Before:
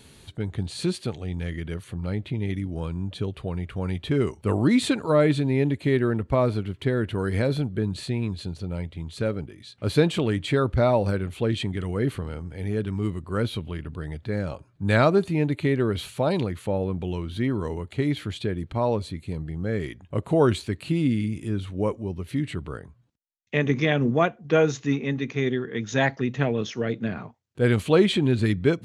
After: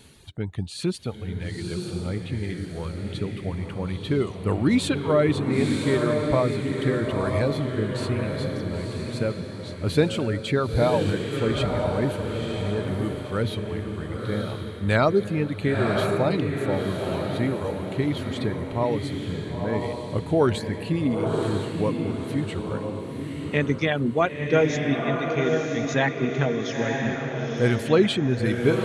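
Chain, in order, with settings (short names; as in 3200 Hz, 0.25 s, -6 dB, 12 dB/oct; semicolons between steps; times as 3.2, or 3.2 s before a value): reverb removal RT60 1.2 s; diffused feedback echo 0.968 s, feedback 42%, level -3 dB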